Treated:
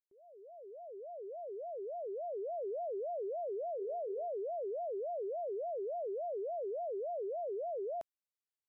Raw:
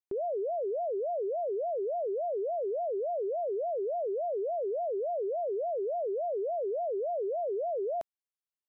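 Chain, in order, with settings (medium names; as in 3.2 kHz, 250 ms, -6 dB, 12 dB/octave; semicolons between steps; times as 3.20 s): fade-in on the opening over 2.70 s; 3.61–4.28 s: hum notches 60/120/180/240/300/360/420/480 Hz; trim -6.5 dB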